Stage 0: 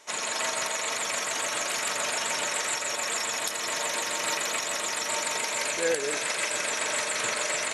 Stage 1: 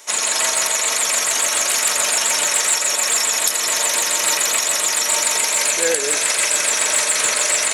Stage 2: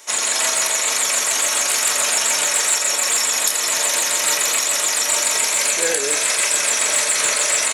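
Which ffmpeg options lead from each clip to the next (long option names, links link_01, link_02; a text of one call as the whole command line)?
ffmpeg -i in.wav -filter_complex "[0:a]highpass=frequency=200:poles=1,aemphasis=mode=production:type=50kf,asplit=2[link_01][link_02];[link_02]volume=21dB,asoftclip=hard,volume=-21dB,volume=-7.5dB[link_03];[link_01][link_03]amix=inputs=2:normalize=0,volume=3.5dB" out.wav
ffmpeg -i in.wav -filter_complex "[0:a]asplit=2[link_01][link_02];[link_02]adelay=29,volume=-7.5dB[link_03];[link_01][link_03]amix=inputs=2:normalize=0,volume=-1dB" out.wav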